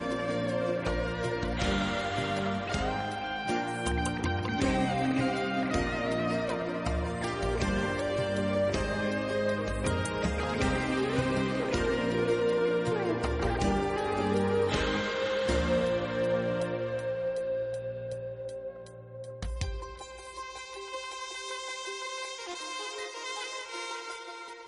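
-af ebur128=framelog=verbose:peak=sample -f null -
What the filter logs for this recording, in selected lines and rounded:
Integrated loudness:
  I:         -30.9 LUFS
  Threshold: -41.1 LUFS
Loudness range:
  LRA:         9.0 LU
  Threshold: -51.0 LUFS
  LRA low:   -37.9 LUFS
  LRA high:  -28.9 LUFS
Sample peak:
  Peak:      -15.1 dBFS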